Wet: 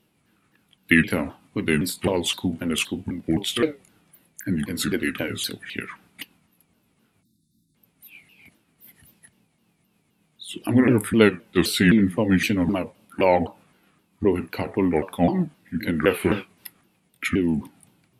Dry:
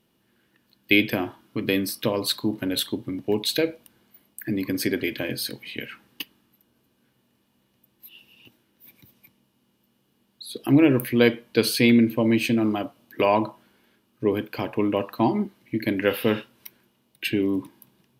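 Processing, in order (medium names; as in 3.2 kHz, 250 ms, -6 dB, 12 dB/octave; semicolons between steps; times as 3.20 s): sawtooth pitch modulation -5.5 st, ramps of 259 ms; spectral selection erased 7.23–7.75 s, 350–3500 Hz; trim +2.5 dB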